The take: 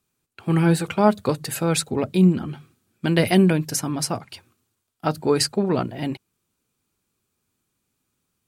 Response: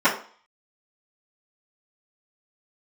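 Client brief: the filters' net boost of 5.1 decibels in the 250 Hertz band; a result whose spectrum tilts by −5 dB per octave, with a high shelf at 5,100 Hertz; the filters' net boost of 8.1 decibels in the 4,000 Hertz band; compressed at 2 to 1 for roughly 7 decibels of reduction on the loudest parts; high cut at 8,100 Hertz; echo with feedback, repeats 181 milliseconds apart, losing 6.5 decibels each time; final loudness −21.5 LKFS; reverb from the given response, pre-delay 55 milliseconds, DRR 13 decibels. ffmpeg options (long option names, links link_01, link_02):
-filter_complex "[0:a]lowpass=8100,equalizer=frequency=250:width_type=o:gain=8,equalizer=frequency=4000:width_type=o:gain=7,highshelf=frequency=5100:gain=7,acompressor=threshold=-19dB:ratio=2,aecho=1:1:181|362|543|724|905|1086:0.473|0.222|0.105|0.0491|0.0231|0.0109,asplit=2[link_01][link_02];[1:a]atrim=start_sample=2205,adelay=55[link_03];[link_02][link_03]afir=irnorm=-1:irlink=0,volume=-33dB[link_04];[link_01][link_04]amix=inputs=2:normalize=0,volume=-0.5dB"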